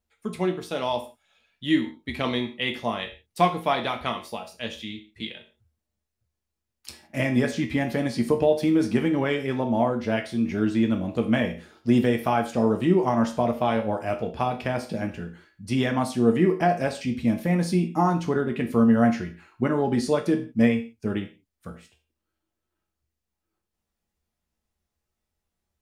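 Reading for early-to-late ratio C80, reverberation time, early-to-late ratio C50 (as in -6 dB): 16.0 dB, no single decay rate, 11.0 dB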